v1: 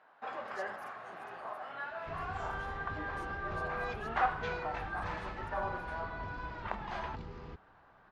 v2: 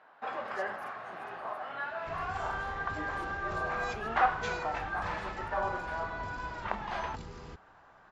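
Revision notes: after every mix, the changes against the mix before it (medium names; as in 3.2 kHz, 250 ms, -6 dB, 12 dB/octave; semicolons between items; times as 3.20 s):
first sound +4.0 dB; second sound: remove distance through air 220 m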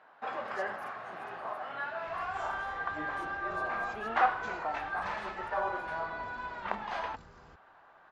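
second sound -11.0 dB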